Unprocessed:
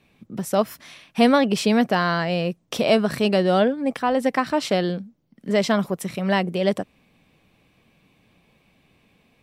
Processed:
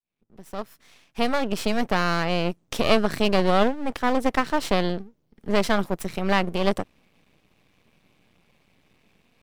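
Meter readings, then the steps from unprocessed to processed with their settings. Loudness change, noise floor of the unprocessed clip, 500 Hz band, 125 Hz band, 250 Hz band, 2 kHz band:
−2.5 dB, −63 dBFS, −3.5 dB, −2.5 dB, −4.0 dB, −1.0 dB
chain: fade in at the beginning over 2.31 s
half-wave rectification
level +1.5 dB

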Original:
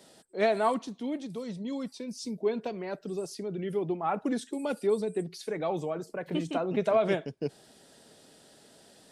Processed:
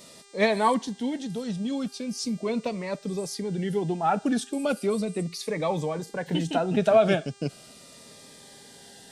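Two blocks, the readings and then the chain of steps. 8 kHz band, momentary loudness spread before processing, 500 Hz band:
+9.0 dB, 11 LU, +3.0 dB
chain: parametric band 360 Hz −7 dB 0.67 octaves
hum with harmonics 400 Hz, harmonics 23, −62 dBFS −2 dB per octave
phaser whose notches keep moving one way falling 0.38 Hz
level +8.5 dB

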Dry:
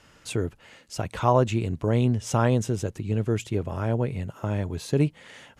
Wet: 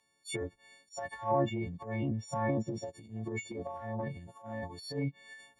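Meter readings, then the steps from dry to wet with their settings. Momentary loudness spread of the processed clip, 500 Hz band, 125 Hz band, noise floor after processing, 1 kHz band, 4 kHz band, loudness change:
12 LU, −9.5 dB, −13.5 dB, −73 dBFS, −7.5 dB, −7.5 dB, −10.5 dB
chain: every partial snapped to a pitch grid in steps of 4 semitones
noise reduction from a noise print of the clip's start 15 dB
transient designer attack −12 dB, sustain +9 dB
treble cut that deepens with the level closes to 1,800 Hz, closed at −18.5 dBFS
notch comb filter 1,400 Hz
level −7.5 dB

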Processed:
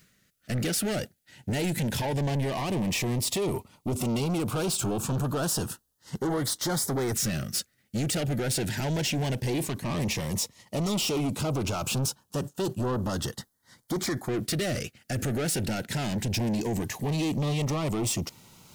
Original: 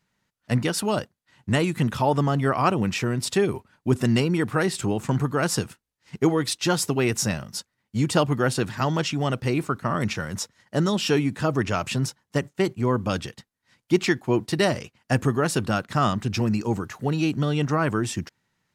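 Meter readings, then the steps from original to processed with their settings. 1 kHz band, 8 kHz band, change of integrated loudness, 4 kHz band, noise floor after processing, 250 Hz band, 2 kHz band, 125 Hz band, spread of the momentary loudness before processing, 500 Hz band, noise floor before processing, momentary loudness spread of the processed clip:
−8.5 dB, +1.5 dB, −4.5 dB, −1.5 dB, −71 dBFS, −5.0 dB, −7.0 dB, −4.0 dB, 7 LU, −6.5 dB, −79 dBFS, 6 LU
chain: high-shelf EQ 8,800 Hz +12 dB
brickwall limiter −17 dBFS, peak gain reduction 10 dB
reversed playback
upward compression, threshold −45 dBFS
reversed playback
soft clipping −31.5 dBFS, distortion −7 dB
auto-filter notch saw up 0.14 Hz 880–2,800 Hz
level +6.5 dB

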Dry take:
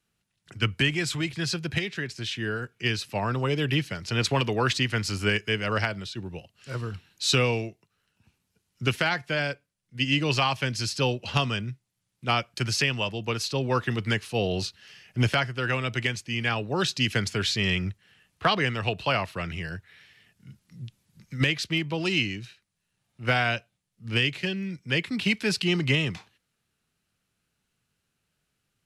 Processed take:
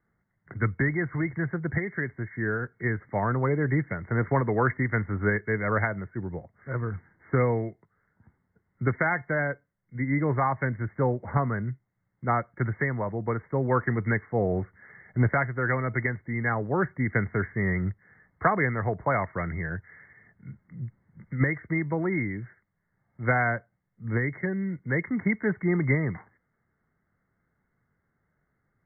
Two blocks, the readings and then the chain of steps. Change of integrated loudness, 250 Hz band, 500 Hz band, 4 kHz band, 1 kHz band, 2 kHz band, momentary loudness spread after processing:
−1.0 dB, +1.5 dB, +1.0 dB, below −40 dB, +1.0 dB, −1.5 dB, 11 LU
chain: in parallel at −2 dB: downward compressor, threshold −38 dBFS, peak gain reduction 18.5 dB
on the sum: linear-phase brick-wall low-pass 2,200 Hz

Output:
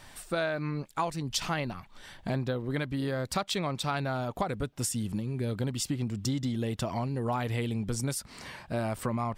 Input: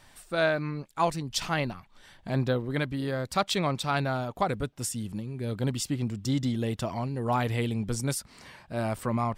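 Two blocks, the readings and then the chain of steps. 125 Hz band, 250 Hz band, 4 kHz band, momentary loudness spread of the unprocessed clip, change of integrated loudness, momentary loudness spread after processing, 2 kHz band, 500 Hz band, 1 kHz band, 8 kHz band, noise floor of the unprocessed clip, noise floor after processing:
−2.0 dB, −2.0 dB, −1.5 dB, 7 LU, −2.5 dB, 4 LU, −3.5 dB, −3.0 dB, −3.5 dB, 0.0 dB, −57 dBFS, −53 dBFS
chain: downward compressor 5 to 1, threshold −33 dBFS, peak gain reduction 12.5 dB
level +5 dB

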